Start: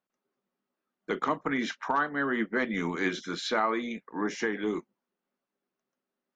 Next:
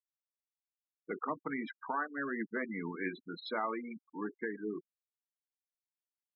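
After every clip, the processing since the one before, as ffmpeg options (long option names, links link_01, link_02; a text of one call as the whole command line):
ffmpeg -i in.wav -af "afftfilt=real='re*gte(hypot(re,im),0.0501)':imag='im*gte(hypot(re,im),0.0501)':win_size=1024:overlap=0.75,volume=-8dB" out.wav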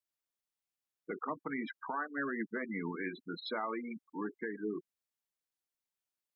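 ffmpeg -i in.wav -af "alimiter=level_in=5.5dB:limit=-24dB:level=0:latency=1:release=168,volume=-5.5dB,volume=2dB" out.wav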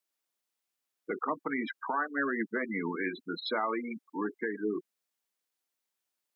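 ffmpeg -i in.wav -af "highpass=210,volume=6dB" out.wav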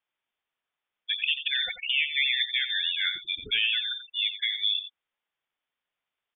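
ffmpeg -i in.wav -af "aecho=1:1:88:0.282,lowpass=frequency=3200:width_type=q:width=0.5098,lowpass=frequency=3200:width_type=q:width=0.6013,lowpass=frequency=3200:width_type=q:width=0.9,lowpass=frequency=3200:width_type=q:width=2.563,afreqshift=-3800,volume=5dB" out.wav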